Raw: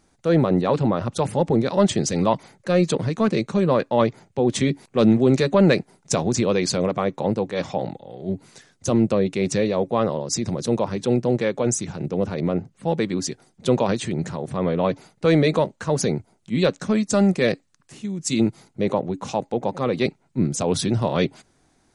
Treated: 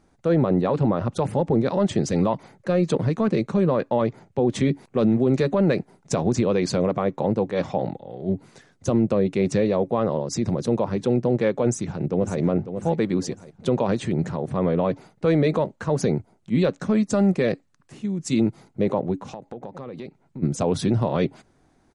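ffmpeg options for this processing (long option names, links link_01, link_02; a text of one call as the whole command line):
ffmpeg -i in.wav -filter_complex "[0:a]asplit=2[link_01][link_02];[link_02]afade=type=in:start_time=11.66:duration=0.01,afade=type=out:start_time=12.4:duration=0.01,aecho=0:1:550|1100|1650|2200:0.316228|0.11068|0.0387379|0.0135583[link_03];[link_01][link_03]amix=inputs=2:normalize=0,asplit=3[link_04][link_05][link_06];[link_04]afade=type=out:start_time=19.18:duration=0.02[link_07];[link_05]acompressor=threshold=-33dB:ratio=10:attack=3.2:release=140:knee=1:detection=peak,afade=type=in:start_time=19.18:duration=0.02,afade=type=out:start_time=20.42:duration=0.02[link_08];[link_06]afade=type=in:start_time=20.42:duration=0.02[link_09];[link_07][link_08][link_09]amix=inputs=3:normalize=0,highshelf=frequency=2500:gain=-10.5,alimiter=limit=-13.5dB:level=0:latency=1:release=113,volume=2dB" out.wav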